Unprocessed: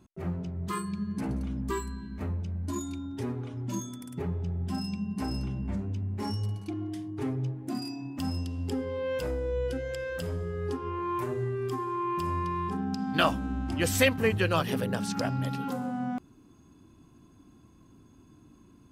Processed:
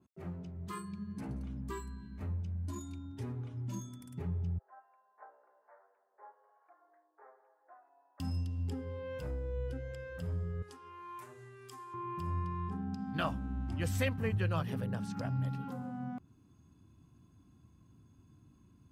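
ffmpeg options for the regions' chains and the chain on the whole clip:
ffmpeg -i in.wav -filter_complex "[0:a]asettb=1/sr,asplit=3[link_01][link_02][link_03];[link_01]atrim=end=4.584[link_04];[link_02]atrim=start=4.58:end=8.2,asetpts=PTS-STARTPTS,afade=type=in:duration=0.004:curve=qsin,afade=type=out:start_time=3.616:duration=0.004:curve=qsin,asuperpass=centerf=930:order=12:qfactor=0.72,acrossover=split=640[link_05][link_06];[link_05]aeval=exprs='val(0)*(1-0.5/2+0.5/2*cos(2*PI*1.2*n/s))':channel_layout=same[link_07];[link_06]aeval=exprs='val(0)*(1-0.5/2-0.5/2*cos(2*PI*1.2*n/s))':channel_layout=same[link_08];[link_07][link_08]amix=inputs=2:normalize=0[link_09];[link_03]atrim=start=8.196[link_10];[link_04][link_09]acrossfade=duration=0.004:curve1=hsin:curve2=qsin[link_11];[link_11][link_10]acrossfade=duration=0.004:curve1=qsin:curve2=hsin,asettb=1/sr,asplit=3[link_12][link_13][link_14];[link_12]atrim=end=10.624[link_15];[link_13]atrim=start=10.62:end=11.94,asetpts=PTS-STARTPTS,afade=type=in:duration=0.004:curve=qsin,afade=type=out:start_time=1.316:duration=0.004:curve=qsin,highpass=frequency=1300:poles=1,equalizer=frequency=8100:width_type=o:width=1.5:gain=7[link_16];[link_14]atrim=start=11.936[link_17];[link_15][link_16]acrossfade=duration=0.004:curve1=hsin:curve2=qsin[link_18];[link_18][link_17]acrossfade=duration=0.004:curve1=qsin:curve2=hsin,asubboost=boost=4:cutoff=150,highpass=83,adynamicequalizer=threshold=0.00355:dfrequency=2200:dqfactor=0.7:tfrequency=2200:tqfactor=0.7:attack=5:release=100:ratio=0.375:range=3.5:mode=cutabove:tftype=highshelf,volume=-9dB" out.wav

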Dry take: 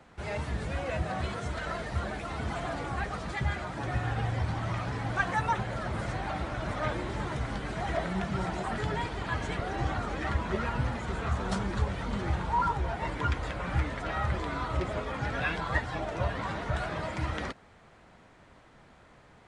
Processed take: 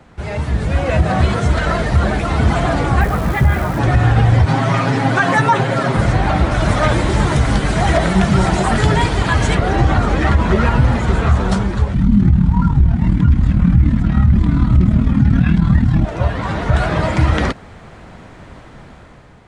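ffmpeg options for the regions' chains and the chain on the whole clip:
ffmpeg -i in.wav -filter_complex "[0:a]asettb=1/sr,asplit=3[link_01][link_02][link_03];[link_01]atrim=end=3.014[link_04];[link_02]atrim=start=3.01:end=3.79,asetpts=PTS-STARTPTS,afade=type=in:duration=0.004:curve=qsin,afade=type=out:start_time=0.776:duration=0.004:curve=qsin,lowpass=2500,acrusher=bits=9:dc=4:mix=0:aa=0.000001[link_05];[link_03]atrim=start=3.786[link_06];[link_04][link_05]acrossfade=duration=0.004:curve1=hsin:curve2=qsin[link_07];[link_07][link_06]acrossfade=duration=0.004:curve1=qsin:curve2=hsin,asettb=1/sr,asplit=3[link_08][link_09][link_10];[link_08]atrim=end=4.464[link_11];[link_09]atrim=start=4.46:end=5.97,asetpts=PTS-STARTPTS,afade=type=in:duration=0.004:curve=qsin,afade=type=out:start_time=1.506:duration=0.004:curve=qsin,highpass=frequency=150:width=0.5412,highpass=frequency=150:width=1.3066,aecho=1:1:7.4:0.77,atrim=end_sample=66591[link_12];[link_10]atrim=start=5.966[link_13];[link_11][link_12]acrossfade=duration=0.004:curve1=hsin:curve2=qsin[link_14];[link_14][link_13]acrossfade=duration=0.004:curve1=qsin:curve2=hsin,asettb=1/sr,asplit=3[link_15][link_16][link_17];[link_15]atrim=end=6.514[link_18];[link_16]atrim=start=6.51:end=9.55,asetpts=PTS-STARTPTS,afade=type=in:duration=0.004:curve=qsin,afade=type=out:start_time=3.036:duration=0.004:curve=qsin,aemphasis=mode=production:type=cd,bandreject=frequency=60:width_type=h:width=6,bandreject=frequency=120:width_type=h:width=6,bandreject=frequency=180:width_type=h:width=6,bandreject=frequency=240:width_type=h:width=6,bandreject=frequency=300:width_type=h:width=6,bandreject=frequency=360:width_type=h:width=6,bandreject=frequency=420:width_type=h:width=6,bandreject=frequency=480:width_type=h:width=6,bandreject=frequency=540:width_type=h:width=6[link_19];[link_17]atrim=start=9.546[link_20];[link_18][link_19]acrossfade=duration=0.004:curve1=hsin:curve2=qsin[link_21];[link_21][link_20]acrossfade=duration=0.004:curve1=qsin:curve2=hsin,asettb=1/sr,asplit=3[link_22][link_23][link_24];[link_22]atrim=end=11.944[link_25];[link_23]atrim=start=11.94:end=16.05,asetpts=PTS-STARTPTS,afade=type=in:duration=0.004:curve=qsin,afade=type=out:start_time=4.106:duration=0.004:curve=qsin,lowshelf=frequency=320:width_type=q:width=3:gain=13.5,tremolo=f=38:d=0.571[link_26];[link_24]atrim=start=16.046[link_27];[link_25][link_26]acrossfade=duration=0.004:curve1=hsin:curve2=qsin[link_28];[link_28][link_27]acrossfade=duration=0.004:curve1=qsin:curve2=hsin,lowshelf=frequency=310:gain=7,dynaudnorm=framelen=310:gausssize=5:maxgain=8dB,alimiter=level_in=10dB:limit=-1dB:release=50:level=0:latency=1,volume=-2.5dB" out.wav

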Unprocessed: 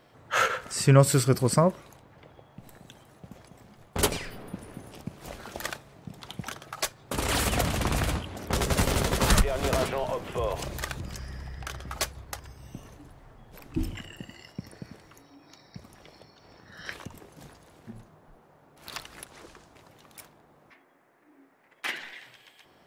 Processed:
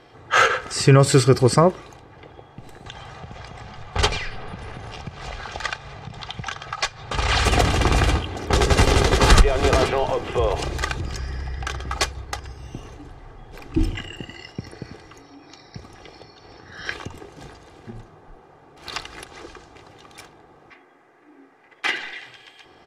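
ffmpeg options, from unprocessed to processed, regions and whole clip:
ffmpeg -i in.wav -filter_complex "[0:a]asettb=1/sr,asplit=3[link_01][link_02][link_03];[link_01]atrim=end=2.864[link_04];[link_02]atrim=start=2.86:end=7.45,asetpts=PTS-STARTPTS,afade=type=in:duration=0.004:curve=qsin,afade=type=out:start_time=4.586:duration=0.004:curve=qsin,lowpass=5900,equalizer=frequency=320:width_type=o:width=1:gain=-14.5,acompressor=mode=upward:threshold=-35dB:ratio=2.5:attack=3.2:release=140:knee=2.83:detection=peak[link_05];[link_03]atrim=start=7.446[link_06];[link_04][link_05]acrossfade=duration=0.004:curve1=hsin:curve2=qsin[link_07];[link_07][link_06]acrossfade=duration=0.004:curve1=qsin:curve2=hsin,lowpass=6400,aecho=1:1:2.5:0.44,alimiter=level_in=9dB:limit=-1dB:release=50:level=0:latency=1,volume=-1dB" out.wav

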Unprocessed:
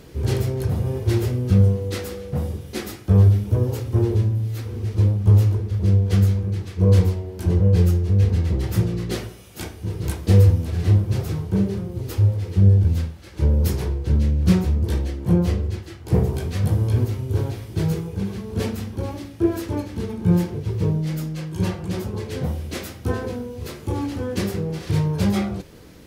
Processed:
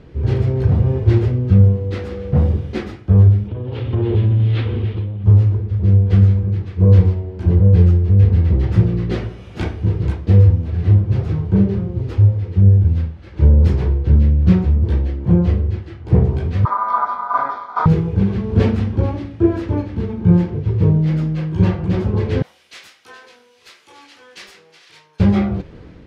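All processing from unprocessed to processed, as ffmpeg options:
ffmpeg -i in.wav -filter_complex "[0:a]asettb=1/sr,asplit=3[link_01][link_02][link_03];[link_01]atrim=end=3.484[link_04];[link_02]atrim=start=3.48:end=5.24,asetpts=PTS-STARTPTS,afade=type=in:duration=0.004:curve=qsin,afade=type=out:start_time=1.756:duration=0.004:curve=qsin,lowshelf=frequency=130:gain=-6.5,acompressor=threshold=-25dB:ratio=6:attack=3.2:release=140:knee=1:detection=peak,lowpass=frequency=3300:width_type=q:width=3.1[link_05];[link_03]atrim=start=5.236[link_06];[link_04][link_05]acrossfade=duration=0.004:curve1=hsin:curve2=qsin[link_07];[link_07][link_06]acrossfade=duration=0.004:curve1=qsin:curve2=hsin,asettb=1/sr,asplit=3[link_08][link_09][link_10];[link_08]atrim=end=16.654[link_11];[link_09]atrim=start=16.65:end=17.86,asetpts=PTS-STARTPTS,afade=type=in:duration=0.004:curve=qsin,afade=type=out:start_time=1.206:duration=0.004:curve=qsin,aeval=exprs='val(0)*sin(2*PI*1100*n/s)':channel_layout=same,asuperstop=centerf=2800:order=4:qfactor=3.8,highpass=100,equalizer=frequency=100:width_type=q:width=4:gain=-9,equalizer=frequency=160:width_type=q:width=4:gain=-9,equalizer=frequency=240:width_type=q:width=4:gain=5,equalizer=frequency=470:width_type=q:width=4:gain=4,equalizer=frequency=1700:width_type=q:width=4:gain=-5,lowpass=frequency=5900:width=0.5412,lowpass=frequency=5900:width=1.3066[link_12];[link_10]atrim=start=17.856[link_13];[link_11][link_12]acrossfade=duration=0.004:curve1=hsin:curve2=qsin[link_14];[link_14][link_13]acrossfade=duration=0.004:curve1=qsin:curve2=hsin,asettb=1/sr,asplit=3[link_15][link_16][link_17];[link_15]atrim=end=22.424[link_18];[link_16]atrim=start=22.42:end=25.2,asetpts=PTS-STARTPTS,afade=type=in:duration=0.004:curve=qsin,afade=type=out:start_time=2.776:duration=0.004:curve=qsin,highpass=frequency=960:poles=1,aderivative,asoftclip=type=hard:threshold=-31.5dB[link_19];[link_17]atrim=start=25.196[link_20];[link_18][link_19]acrossfade=duration=0.004:curve1=hsin:curve2=qsin[link_21];[link_21][link_20]acrossfade=duration=0.004:curve1=qsin:curve2=hsin,lowpass=2800,lowshelf=frequency=200:gain=6,dynaudnorm=framelen=190:gausssize=5:maxgain=11.5dB,volume=-1dB" out.wav

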